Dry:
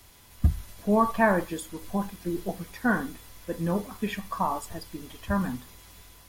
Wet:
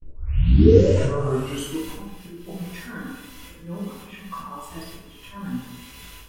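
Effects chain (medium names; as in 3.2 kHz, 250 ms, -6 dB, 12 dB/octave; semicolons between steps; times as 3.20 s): tape start-up on the opening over 1.76 s; gate with hold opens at -40 dBFS; peaking EQ 2.8 kHz +11 dB 0.41 oct; harmonic-percussive split harmonic +5 dB; peaking EQ 710 Hz -7 dB 0.35 oct; slow attack 703 ms; reverberation RT60 1.1 s, pre-delay 3 ms, DRR -6 dB; trim -1 dB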